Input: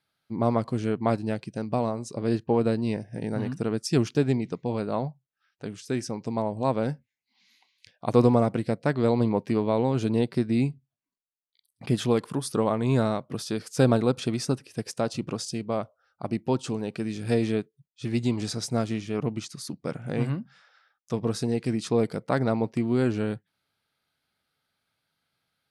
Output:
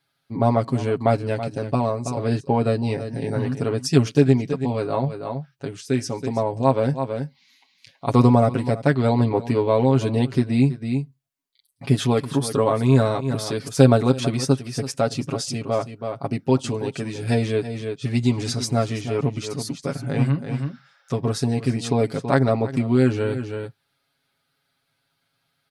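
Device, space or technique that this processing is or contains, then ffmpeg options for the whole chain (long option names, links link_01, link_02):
ducked delay: -filter_complex "[0:a]asplit=3[link_01][link_02][link_03];[link_02]adelay=327,volume=-6dB[link_04];[link_03]apad=whole_len=1148141[link_05];[link_04][link_05]sidechaincompress=threshold=-34dB:ratio=8:attack=10:release=171[link_06];[link_01][link_06]amix=inputs=2:normalize=0,aecho=1:1:7.3:0.81,volume=3dB"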